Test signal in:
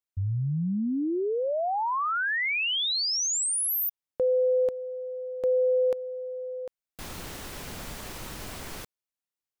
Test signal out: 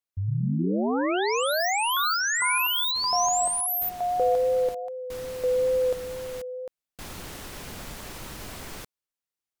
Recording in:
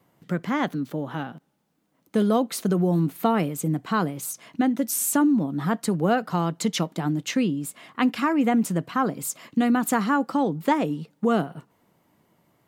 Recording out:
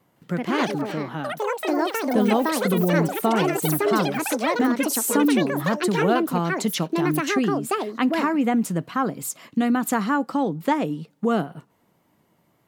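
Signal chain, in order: wow and flutter 17 cents; echoes that change speed 0.161 s, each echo +6 st, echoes 3

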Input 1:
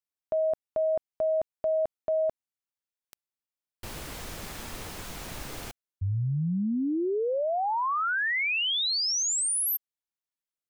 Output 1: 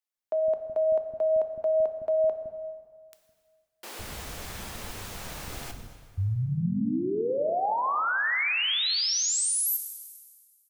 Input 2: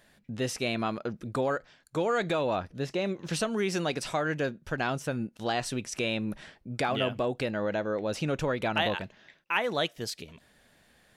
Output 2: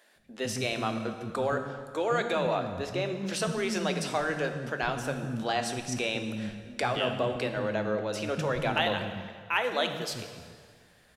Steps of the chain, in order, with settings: bands offset in time highs, lows 0.16 s, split 280 Hz; plate-style reverb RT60 1.9 s, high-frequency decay 0.85×, DRR 6.5 dB

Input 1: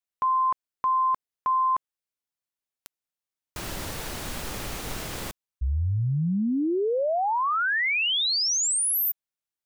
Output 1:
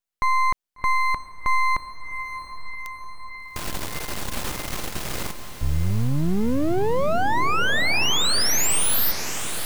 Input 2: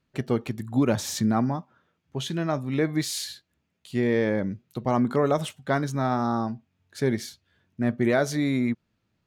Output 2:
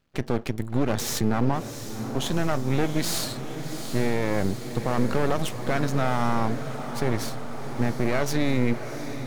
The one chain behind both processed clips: half-wave rectifier; limiter -19.5 dBFS; diffused feedback echo 0.734 s, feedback 69%, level -10 dB; gain +7 dB

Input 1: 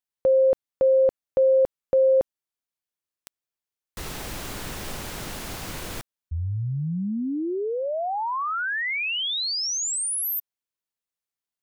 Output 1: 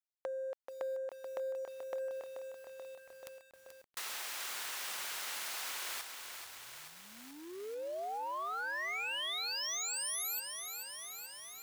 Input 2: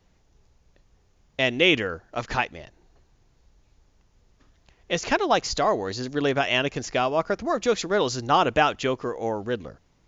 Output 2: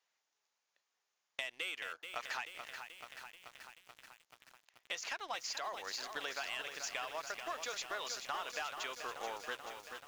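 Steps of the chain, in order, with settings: HPF 1100 Hz 12 dB/oct; sample leveller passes 2; compressor 12:1, threshold -31 dBFS; lo-fi delay 0.433 s, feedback 80%, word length 8-bit, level -7 dB; gain -7 dB

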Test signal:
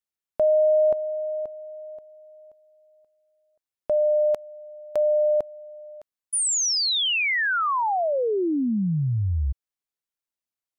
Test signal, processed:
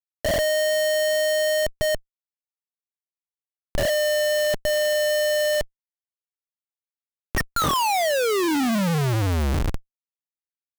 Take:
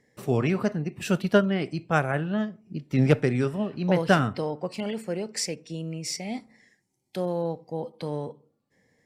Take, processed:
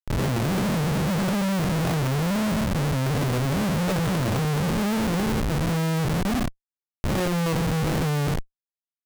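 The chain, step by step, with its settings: time blur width 0.279 s; notches 60/120/180/240/300/360 Hz; LFO low-pass sine 2.5 Hz 830–3700 Hz; RIAA curve playback; Schmitt trigger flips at -32.5 dBFS

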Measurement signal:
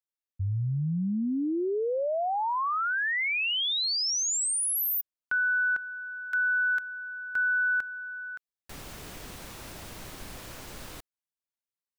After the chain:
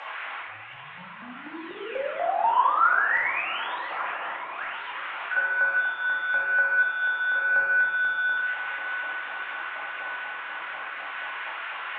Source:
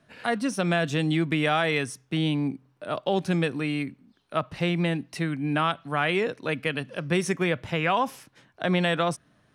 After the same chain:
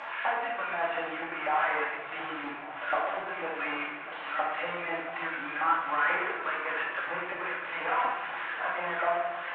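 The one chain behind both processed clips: delta modulation 16 kbps, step -37 dBFS; transient shaper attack -1 dB, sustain -7 dB; compressor, threshold -28 dBFS; air absorption 110 m; LFO high-pass saw up 4.1 Hz 750–1800 Hz; swung echo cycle 1.149 s, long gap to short 1.5:1, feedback 61%, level -15.5 dB; shoebox room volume 540 m³, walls mixed, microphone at 2.3 m; gain +1.5 dB

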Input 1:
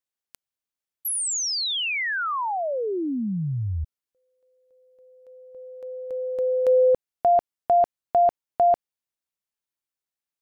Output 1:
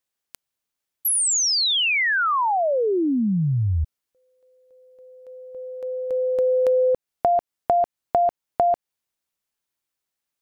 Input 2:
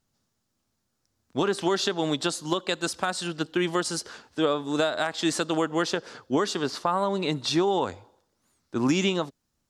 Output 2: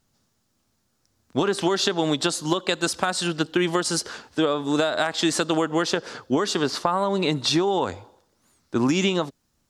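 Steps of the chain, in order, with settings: compressor, threshold -24 dBFS; gain +6.5 dB

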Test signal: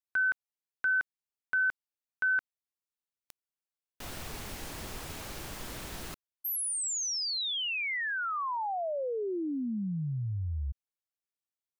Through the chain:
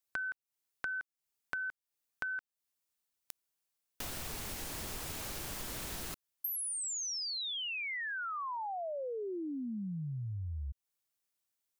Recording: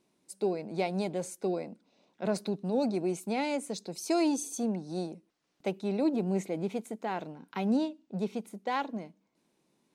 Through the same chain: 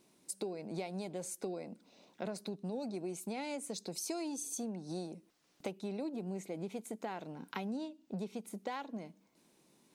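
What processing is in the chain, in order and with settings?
high shelf 5200 Hz +6.5 dB; compressor 6:1, threshold -42 dBFS; gain +4 dB

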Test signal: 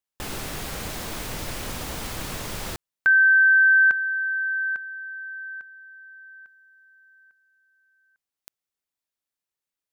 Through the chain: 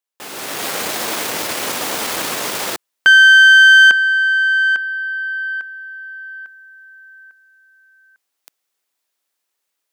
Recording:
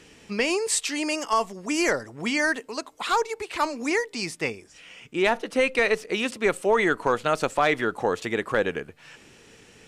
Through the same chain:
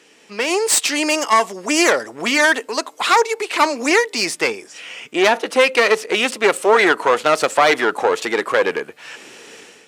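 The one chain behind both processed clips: one diode to ground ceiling -25.5 dBFS; HPF 330 Hz 12 dB/oct; AGC gain up to 12 dB; gain +1.5 dB

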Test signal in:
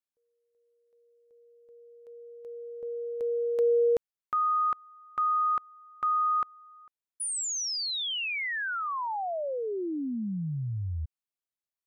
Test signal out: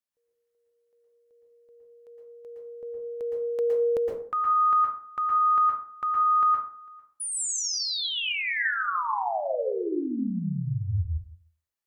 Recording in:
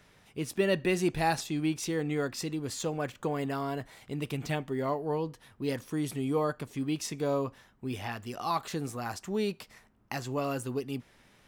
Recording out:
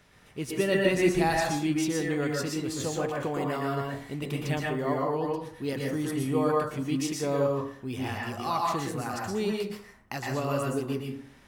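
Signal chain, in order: plate-style reverb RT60 0.5 s, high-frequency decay 0.55×, pre-delay 0.105 s, DRR -2 dB

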